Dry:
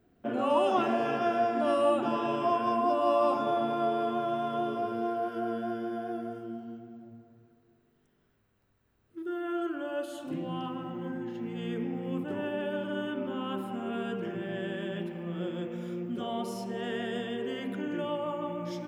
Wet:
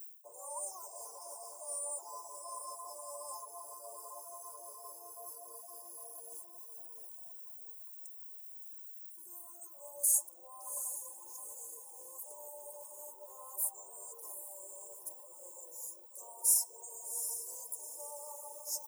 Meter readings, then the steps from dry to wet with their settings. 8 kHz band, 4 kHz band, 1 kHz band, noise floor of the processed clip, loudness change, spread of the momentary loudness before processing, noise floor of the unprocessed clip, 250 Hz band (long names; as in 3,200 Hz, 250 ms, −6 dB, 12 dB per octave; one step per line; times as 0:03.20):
can't be measured, −12.0 dB, −18.5 dB, −54 dBFS, −8.0 dB, 11 LU, −70 dBFS, below −40 dB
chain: reversed playback
downward compressor 5 to 1, threshold −39 dBFS, peak gain reduction 16 dB
reversed playback
Chebyshev high-pass filter 1,100 Hz, order 4
feedback delay with all-pass diffusion 777 ms, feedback 40%, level −8 dB
reverb reduction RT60 0.72 s
inverse Chebyshev band-stop filter 1,400–3,600 Hz, stop band 60 dB
comb filter 2.1 ms, depth 60%
in parallel at +1 dB: speech leveller within 5 dB 2 s
on the sum: high-shelf EQ 3,800 Hz +9.5 dB
level +15 dB